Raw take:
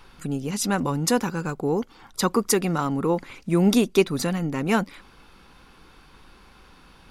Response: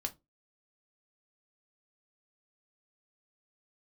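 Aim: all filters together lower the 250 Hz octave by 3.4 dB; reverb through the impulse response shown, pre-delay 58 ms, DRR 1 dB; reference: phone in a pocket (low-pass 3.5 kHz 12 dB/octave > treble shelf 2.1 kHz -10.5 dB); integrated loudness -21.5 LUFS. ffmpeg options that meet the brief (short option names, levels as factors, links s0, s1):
-filter_complex "[0:a]equalizer=f=250:t=o:g=-4.5,asplit=2[s0][s1];[1:a]atrim=start_sample=2205,adelay=58[s2];[s1][s2]afir=irnorm=-1:irlink=0,volume=0.891[s3];[s0][s3]amix=inputs=2:normalize=0,lowpass=3500,highshelf=f=2100:g=-10.5,volume=1.41"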